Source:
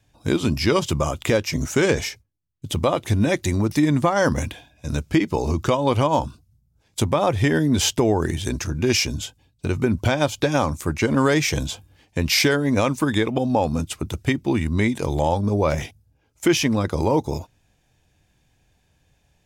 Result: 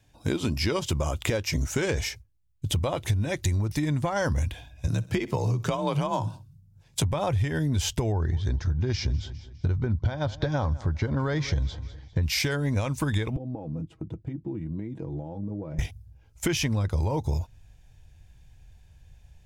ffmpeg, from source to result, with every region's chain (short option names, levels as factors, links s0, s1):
-filter_complex "[0:a]asettb=1/sr,asplit=3[s0][s1][s2];[s0]atrim=end=4.874[s3];[s1]atrim=start=4.87:end=7.03,asetpts=PTS-STARTPTS,afade=t=in:d=0.004:c=qsin,afade=t=out:st=2.156:d=0.004:c=qsin,aecho=1:1:63|126|189:0.0841|0.0395|0.0186,atrim=end_sample=95256,afreqshift=39[s4];[s2]atrim=start=7.026[s5];[s3][s4]acrossfade=d=0.004:c1=hsin:c2=qsin[s6];[s6][s5]acrossfade=d=0.004:c1=qsin:c2=hsin,asettb=1/sr,asplit=3[s7][s8][s9];[s7]atrim=end=8.124[s10];[s8]atrim=start=8.12:end=12.23,asetpts=PTS-STARTPTS,afade=t=in:d=0.004:c=qsin,afade=t=out:st=4.106:d=0.004:c=qsin,lowpass=f=4700:w=0.5412,lowpass=f=4700:w=1.3066,equalizer=f=2600:w=3:g=-13,aecho=1:1:202|404|606:0.1|0.036|0.013,atrim=end_sample=181251[s11];[s9]atrim=start=12.226[s12];[s10][s11]acrossfade=d=0.004:c1=hsin:c2=qsin[s13];[s13][s12]acrossfade=d=0.004:c1=qsin:c2=hsin,asettb=1/sr,asplit=3[s14][s15][s16];[s14]atrim=end=13.364[s17];[s15]atrim=start=13.36:end=15.79,asetpts=PTS-STARTPTS,afade=t=in:d=0.004:c=qsin,afade=t=out:st=2.426:d=0.004:c=qsin,aecho=1:1:6.2:0.58,atrim=end_sample=107163,acompressor=threshold=0.0708:ratio=10:attack=3.2:release=140:knee=1:detection=peak,bandpass=f=280:t=q:w=1.9[s18];[s16]atrim=start=15.786[s19];[s17][s18]acrossfade=d=0.004:c1=hsin:c2=qsin[s20];[s20][s19]acrossfade=d=0.004:c1=qsin:c2=hsin,bandreject=f=1200:w=15,asubboost=boost=7:cutoff=96,acompressor=threshold=0.0708:ratio=6"